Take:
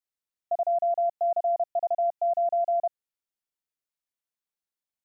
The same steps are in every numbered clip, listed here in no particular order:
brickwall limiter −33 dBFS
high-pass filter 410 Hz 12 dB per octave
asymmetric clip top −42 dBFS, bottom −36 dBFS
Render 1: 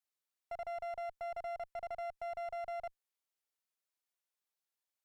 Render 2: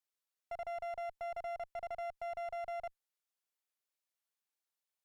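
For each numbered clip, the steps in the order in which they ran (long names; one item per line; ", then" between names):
brickwall limiter, then high-pass filter, then asymmetric clip
high-pass filter, then brickwall limiter, then asymmetric clip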